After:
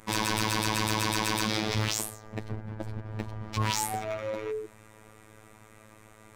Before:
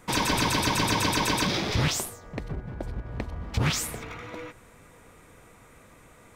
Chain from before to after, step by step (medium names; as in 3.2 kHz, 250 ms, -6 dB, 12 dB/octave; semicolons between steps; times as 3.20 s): hard clipper -24.5 dBFS, distortion -10 dB; painted sound fall, 3.57–4.66 s, 380–1100 Hz -33 dBFS; robot voice 108 Hz; trim +1.5 dB